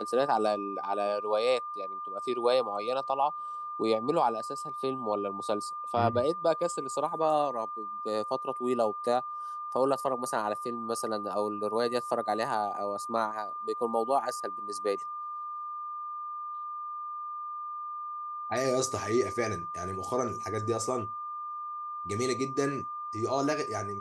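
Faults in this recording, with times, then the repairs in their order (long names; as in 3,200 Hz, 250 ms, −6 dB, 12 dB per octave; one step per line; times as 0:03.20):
whistle 1,200 Hz −35 dBFS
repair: notch filter 1,200 Hz, Q 30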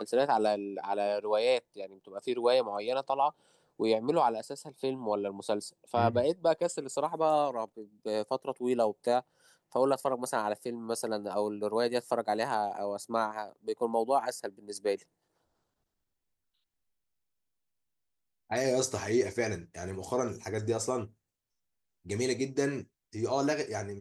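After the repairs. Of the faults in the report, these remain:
none of them is left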